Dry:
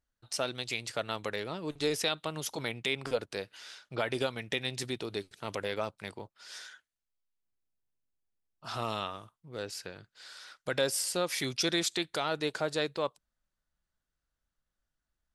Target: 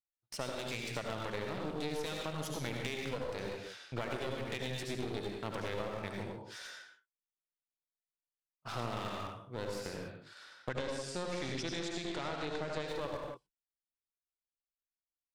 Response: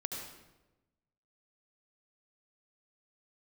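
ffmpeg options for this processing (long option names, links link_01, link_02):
-filter_complex "[0:a]agate=range=-34dB:threshold=-48dB:ratio=16:detection=peak[link_01];[1:a]atrim=start_sample=2205,afade=type=out:start_time=0.35:duration=0.01,atrim=end_sample=15876[link_02];[link_01][link_02]afir=irnorm=-1:irlink=0,acompressor=threshold=-35dB:ratio=6,bass=frequency=250:gain=4,treble=frequency=4000:gain=-11,aeval=exprs='clip(val(0),-1,0.00531)':channel_layout=same,asettb=1/sr,asplit=3[link_03][link_04][link_05];[link_03]atrim=end=10.694[link_06];[link_04]atrim=start=10.69:end=12.88,asetpts=PTS-STARTPTS,afade=type=in:duration=0.004:curve=qsin,afade=type=out:start_time=2.186:duration=0.004:curve=qsin,lowpass=frequency=8000:width=0.5412,lowpass=frequency=8000:width=1.3066[link_07];[link_05]atrim=start=12.876[link_08];[link_06][link_07]acrossfade=duration=0.004:curve1=hsin:curve2=qsin[link_09];[link_09][link_08]acrossfade=duration=0.004:curve1=qsin:curve2=hsin,adynamicequalizer=threshold=0.00112:dfrequency=4700:dqfactor=0.7:tfrequency=4700:tqfactor=0.7:attack=5:release=100:ratio=0.375:range=3:mode=boostabove:tftype=highshelf,volume=2dB"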